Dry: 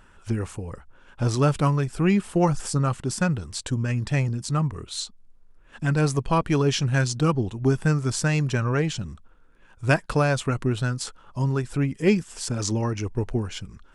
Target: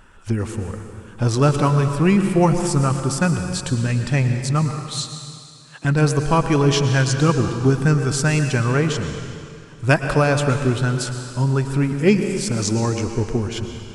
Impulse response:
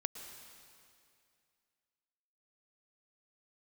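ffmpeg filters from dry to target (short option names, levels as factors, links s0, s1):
-filter_complex "[0:a]asettb=1/sr,asplit=3[s0][s1][s2];[s0]atrim=end=4.714[s3];[s1]atrim=start=4.71:end=5.85,asetpts=PTS-STARTPTS,afade=t=in:d=0.004:c=qsin,afade=t=out:st=1.136:d=0.004:c=qsin,highpass=570[s4];[s2]atrim=start=5.846[s5];[s3][s4]acrossfade=d=0.004:c1=hsin:c2=qsin[s6];[s6][s5]acrossfade=d=0.004:c1=qsin:c2=hsin[s7];[1:a]atrim=start_sample=2205[s8];[s7][s8]afir=irnorm=-1:irlink=0,volume=1.88"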